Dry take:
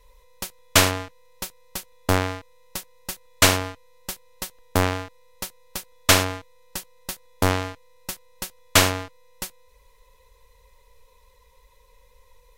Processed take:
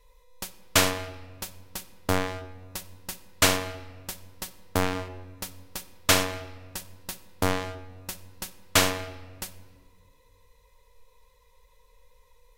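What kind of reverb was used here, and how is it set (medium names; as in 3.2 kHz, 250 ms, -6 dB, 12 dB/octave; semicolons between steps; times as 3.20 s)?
simulated room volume 1600 m³, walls mixed, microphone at 0.5 m; trim -4.5 dB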